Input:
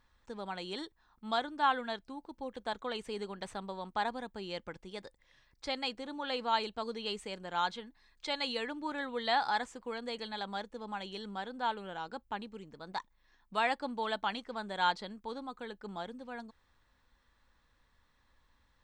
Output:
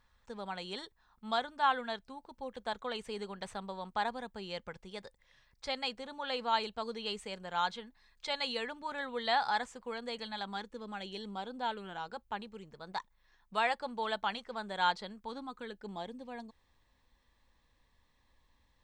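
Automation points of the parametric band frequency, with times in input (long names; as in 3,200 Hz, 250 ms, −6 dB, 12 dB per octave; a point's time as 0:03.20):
parametric band −14 dB 0.26 octaves
0:10.10 310 Hz
0:11.51 2,000 Hz
0:12.08 280 Hz
0:15.16 280 Hz
0:15.91 1,400 Hz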